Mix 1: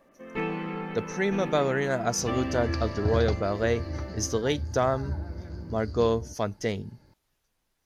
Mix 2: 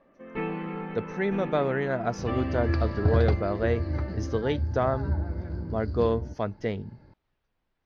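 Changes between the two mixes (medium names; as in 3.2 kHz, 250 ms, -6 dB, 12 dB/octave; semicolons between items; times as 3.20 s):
second sound +5.0 dB; master: add distance through air 280 m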